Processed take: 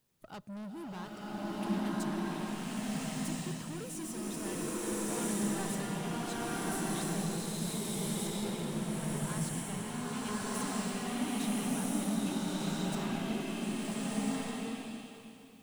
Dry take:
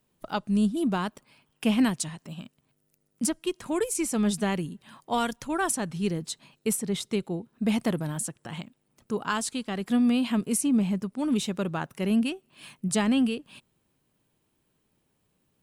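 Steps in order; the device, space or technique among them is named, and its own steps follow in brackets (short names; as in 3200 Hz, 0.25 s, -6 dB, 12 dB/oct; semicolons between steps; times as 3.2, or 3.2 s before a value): open-reel tape (soft clip -33.5 dBFS, distortion -5 dB; bell 110 Hz +5 dB 0.88 oct; white noise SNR 35 dB); bloom reverb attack 1.36 s, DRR -10 dB; gain -8.5 dB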